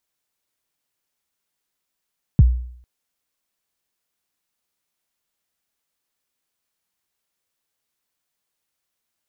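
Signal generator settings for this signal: kick drum length 0.45 s, from 180 Hz, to 61 Hz, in 30 ms, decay 0.62 s, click off, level -5 dB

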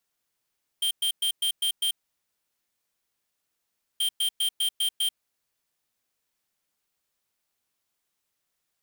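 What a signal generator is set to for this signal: beep pattern square 3170 Hz, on 0.09 s, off 0.11 s, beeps 6, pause 2.09 s, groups 2, -25 dBFS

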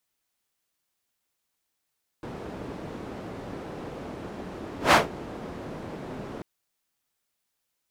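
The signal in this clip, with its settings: whoosh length 4.19 s, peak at 2.7, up 0.14 s, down 0.17 s, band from 340 Hz, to 1100 Hz, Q 0.72, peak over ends 22 dB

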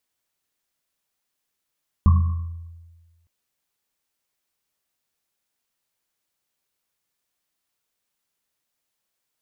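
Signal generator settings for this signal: Risset drum length 1.21 s, pitch 84 Hz, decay 1.42 s, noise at 1100 Hz, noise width 130 Hz, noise 10%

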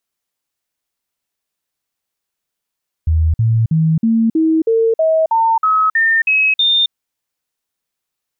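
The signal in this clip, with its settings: stepped sine 80 Hz up, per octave 2, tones 12, 0.27 s, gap 0.05 s -10 dBFS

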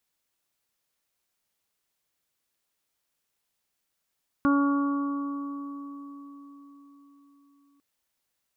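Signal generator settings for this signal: additive tone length 3.35 s, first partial 282 Hz, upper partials -14/-18/-7/-11 dB, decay 4.69 s, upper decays 2.86/3.00/4.31/1.85 s, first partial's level -19 dB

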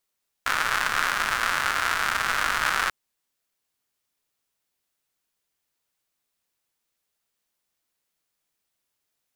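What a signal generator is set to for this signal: rain from filtered ticks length 2.44 s, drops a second 210, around 1400 Hz, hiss -16 dB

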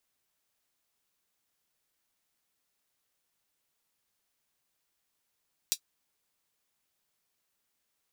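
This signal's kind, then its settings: closed hi-hat, high-pass 4200 Hz, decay 0.08 s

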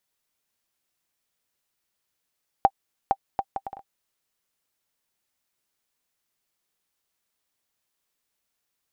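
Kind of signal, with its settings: bouncing ball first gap 0.46 s, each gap 0.61, 786 Hz, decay 54 ms -5 dBFS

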